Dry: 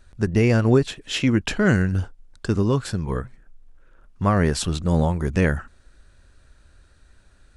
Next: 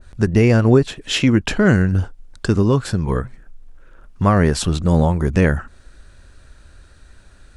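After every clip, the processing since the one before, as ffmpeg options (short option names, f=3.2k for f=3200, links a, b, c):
-filter_complex "[0:a]asplit=2[a][b];[b]acompressor=threshold=-27dB:ratio=6,volume=-2.5dB[c];[a][c]amix=inputs=2:normalize=0,adynamicequalizer=threshold=0.0178:dfrequency=1600:dqfactor=0.7:tfrequency=1600:tqfactor=0.7:attack=5:release=100:ratio=0.375:range=2.5:mode=cutabove:tftype=highshelf,volume=3dB"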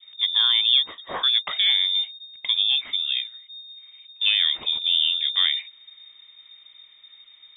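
-filter_complex "[0:a]asplit=2[a][b];[b]asoftclip=type=hard:threshold=-17dB,volume=-10.5dB[c];[a][c]amix=inputs=2:normalize=0,lowpass=f=3.1k:t=q:w=0.5098,lowpass=f=3.1k:t=q:w=0.6013,lowpass=f=3.1k:t=q:w=0.9,lowpass=f=3.1k:t=q:w=2.563,afreqshift=-3700,volume=-8dB"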